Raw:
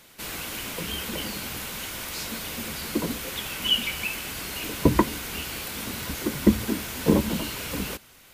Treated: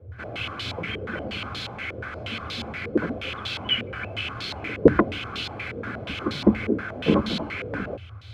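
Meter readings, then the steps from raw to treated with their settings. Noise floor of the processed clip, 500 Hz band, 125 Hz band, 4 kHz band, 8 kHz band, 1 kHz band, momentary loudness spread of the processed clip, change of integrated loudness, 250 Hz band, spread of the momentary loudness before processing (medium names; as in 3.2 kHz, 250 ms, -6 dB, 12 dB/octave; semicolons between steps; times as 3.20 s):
-39 dBFS, +5.0 dB, 0.0 dB, -1.5 dB, under -15 dB, +1.0 dB, 11 LU, +0.5 dB, +1.0 dB, 9 LU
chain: comb of notches 930 Hz; band noise 75–120 Hz -42 dBFS; step-sequenced low-pass 8.4 Hz 480–3900 Hz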